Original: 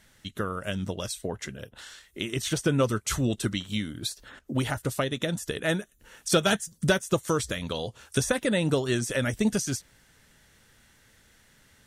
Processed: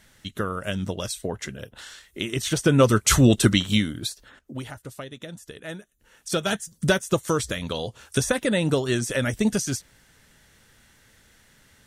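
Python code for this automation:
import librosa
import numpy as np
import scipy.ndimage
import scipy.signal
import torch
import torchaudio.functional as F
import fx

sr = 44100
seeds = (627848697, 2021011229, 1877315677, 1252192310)

y = fx.gain(x, sr, db=fx.line((2.5, 3.0), (3.08, 10.5), (3.7, 10.5), (4.24, -2.0), (4.77, -9.5), (5.72, -9.5), (6.91, 2.5)))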